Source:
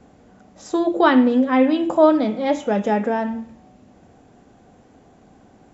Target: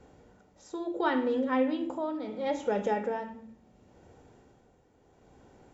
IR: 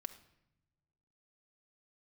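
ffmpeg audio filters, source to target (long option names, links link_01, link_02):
-filter_complex "[0:a]asplit=2[link_01][link_02];[link_02]acompressor=threshold=-23dB:ratio=6,volume=3dB[link_03];[link_01][link_03]amix=inputs=2:normalize=0,tremolo=f=0.72:d=0.64[link_04];[1:a]atrim=start_sample=2205,asetrate=74970,aresample=44100[link_05];[link_04][link_05]afir=irnorm=-1:irlink=0,volume=-4.5dB"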